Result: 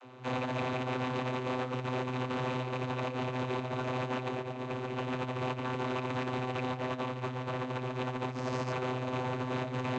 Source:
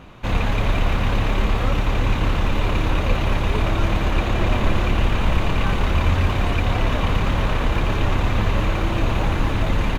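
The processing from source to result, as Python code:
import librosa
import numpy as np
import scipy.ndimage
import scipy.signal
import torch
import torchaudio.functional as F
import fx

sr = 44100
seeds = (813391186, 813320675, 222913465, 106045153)

y = fx.resample_bad(x, sr, factor=6, down='none', up='hold', at=(8.31, 8.72))
y = fx.vocoder(y, sr, bands=32, carrier='saw', carrier_hz=127.0)
y = fx.bass_treble(y, sr, bass_db=-10, treble_db=6)
y = fx.over_compress(y, sr, threshold_db=-32.0, ratio=-0.5)
y = F.gain(torch.from_numpy(y), -2.0).numpy()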